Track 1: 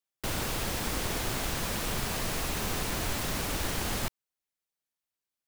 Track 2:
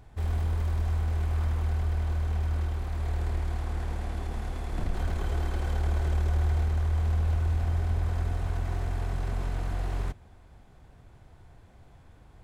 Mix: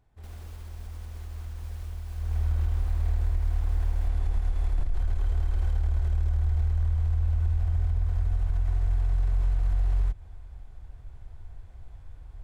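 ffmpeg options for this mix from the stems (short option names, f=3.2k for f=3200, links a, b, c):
-filter_complex "[0:a]alimiter=level_in=4dB:limit=-24dB:level=0:latency=1:release=308,volume=-4dB,volume=-17dB[a];[1:a]asubboost=boost=8:cutoff=67,volume=-2.5dB,afade=t=in:st=2.13:d=0.4:silence=0.237137[b];[a][b]amix=inputs=2:normalize=0,alimiter=limit=-18.5dB:level=0:latency=1:release=145"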